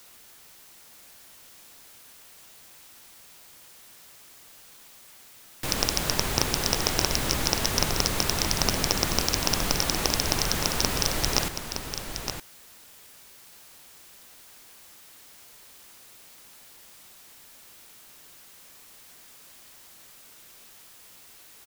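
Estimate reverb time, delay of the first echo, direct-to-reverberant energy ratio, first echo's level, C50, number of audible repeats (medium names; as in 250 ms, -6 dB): no reverb, 916 ms, no reverb, -8.0 dB, no reverb, 1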